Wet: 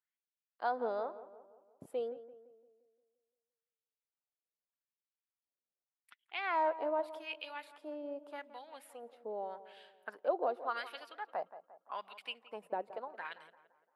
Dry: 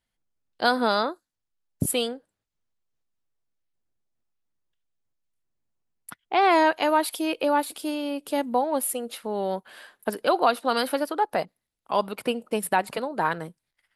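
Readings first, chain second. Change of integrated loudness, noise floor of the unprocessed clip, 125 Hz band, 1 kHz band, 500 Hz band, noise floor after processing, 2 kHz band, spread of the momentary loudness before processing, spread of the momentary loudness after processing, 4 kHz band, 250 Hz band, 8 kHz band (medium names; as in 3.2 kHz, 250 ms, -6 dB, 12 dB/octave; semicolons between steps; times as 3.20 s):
-14.0 dB, -84 dBFS, no reading, -14.5 dB, -12.5 dB, under -85 dBFS, -14.5 dB, 11 LU, 17 LU, -18.0 dB, -21.5 dB, under -30 dB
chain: LFO band-pass sine 0.84 Hz 480–3100 Hz; on a send: tape echo 172 ms, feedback 54%, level -13 dB, low-pass 1.6 kHz; on the sum: trim -7.5 dB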